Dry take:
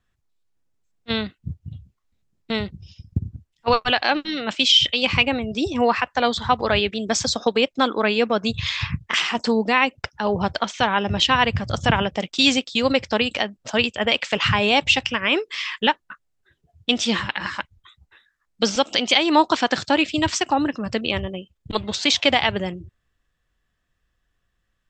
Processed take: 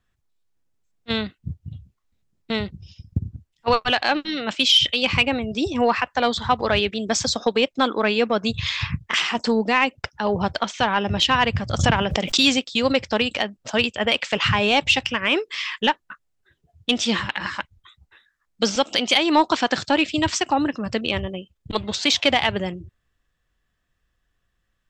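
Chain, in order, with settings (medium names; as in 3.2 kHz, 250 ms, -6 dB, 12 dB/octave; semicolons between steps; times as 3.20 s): saturation -4 dBFS, distortion -24 dB; 11.79–12.47 s: swell ahead of each attack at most 52 dB/s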